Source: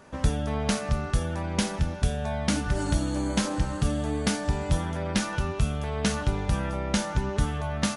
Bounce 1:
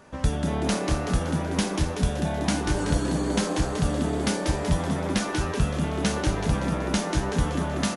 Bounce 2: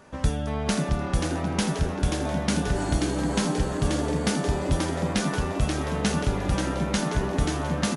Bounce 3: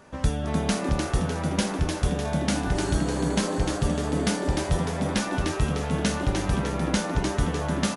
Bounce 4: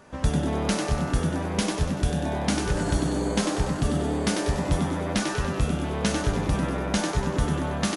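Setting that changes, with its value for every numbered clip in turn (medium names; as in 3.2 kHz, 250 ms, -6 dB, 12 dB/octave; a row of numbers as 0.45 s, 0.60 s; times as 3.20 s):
frequency-shifting echo, time: 189 ms, 533 ms, 301 ms, 96 ms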